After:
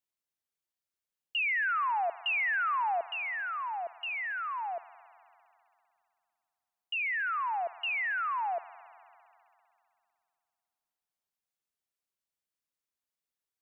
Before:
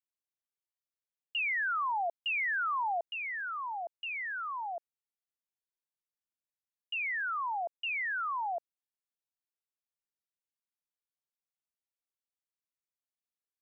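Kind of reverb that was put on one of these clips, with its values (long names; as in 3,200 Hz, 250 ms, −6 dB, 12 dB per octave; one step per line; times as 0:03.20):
spring reverb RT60 2.7 s, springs 56 ms, chirp 25 ms, DRR 16.5 dB
level +2 dB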